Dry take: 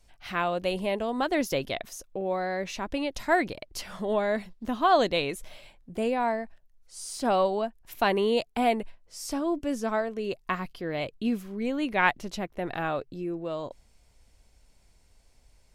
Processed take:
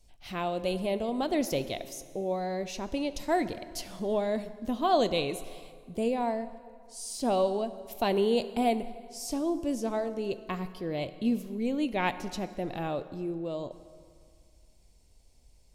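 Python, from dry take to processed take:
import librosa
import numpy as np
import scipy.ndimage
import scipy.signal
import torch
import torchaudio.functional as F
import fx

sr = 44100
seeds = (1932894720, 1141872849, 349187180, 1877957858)

y = fx.peak_eq(x, sr, hz=1500.0, db=-12.0, octaves=1.3)
y = fx.rev_plate(y, sr, seeds[0], rt60_s=2.1, hf_ratio=0.7, predelay_ms=0, drr_db=12.0)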